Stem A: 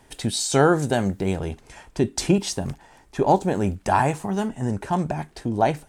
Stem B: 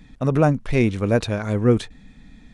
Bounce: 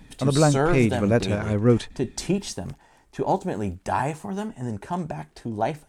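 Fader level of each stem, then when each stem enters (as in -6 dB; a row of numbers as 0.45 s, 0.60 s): -5.0 dB, -1.5 dB; 0.00 s, 0.00 s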